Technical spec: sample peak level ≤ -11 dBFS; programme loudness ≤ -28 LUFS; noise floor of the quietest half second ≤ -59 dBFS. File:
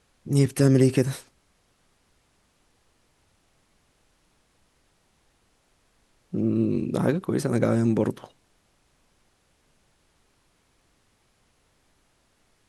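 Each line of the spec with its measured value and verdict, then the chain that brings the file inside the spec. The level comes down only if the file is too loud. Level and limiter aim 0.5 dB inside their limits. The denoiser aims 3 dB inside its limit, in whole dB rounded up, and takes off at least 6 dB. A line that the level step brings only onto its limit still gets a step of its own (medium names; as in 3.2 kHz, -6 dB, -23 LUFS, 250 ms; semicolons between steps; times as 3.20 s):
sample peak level -7.0 dBFS: fail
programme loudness -23.5 LUFS: fail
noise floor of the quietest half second -66 dBFS: pass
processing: trim -5 dB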